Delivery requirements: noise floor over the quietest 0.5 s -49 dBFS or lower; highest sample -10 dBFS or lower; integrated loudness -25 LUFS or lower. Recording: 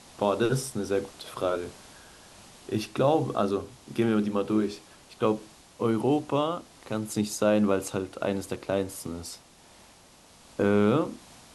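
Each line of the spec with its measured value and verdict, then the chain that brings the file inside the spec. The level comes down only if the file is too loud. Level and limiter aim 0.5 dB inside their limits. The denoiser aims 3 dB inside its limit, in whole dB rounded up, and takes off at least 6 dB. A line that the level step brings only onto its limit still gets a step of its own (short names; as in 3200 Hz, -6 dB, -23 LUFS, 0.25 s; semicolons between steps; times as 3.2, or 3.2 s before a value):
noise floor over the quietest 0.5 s -55 dBFS: OK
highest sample -11.0 dBFS: OK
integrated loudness -28.0 LUFS: OK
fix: none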